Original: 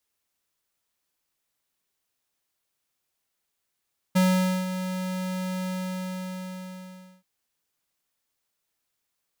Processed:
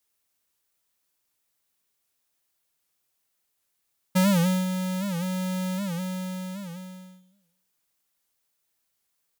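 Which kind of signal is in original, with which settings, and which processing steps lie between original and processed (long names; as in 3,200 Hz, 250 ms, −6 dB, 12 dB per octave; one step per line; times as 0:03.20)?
note with an ADSR envelope square 185 Hz, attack 15 ms, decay 489 ms, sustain −11 dB, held 1.52 s, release 1,560 ms −19 dBFS
high-shelf EQ 7,300 Hz +5.5 dB
on a send: repeating echo 103 ms, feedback 54%, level −16 dB
on the sum: wow of a warped record 78 rpm, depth 160 cents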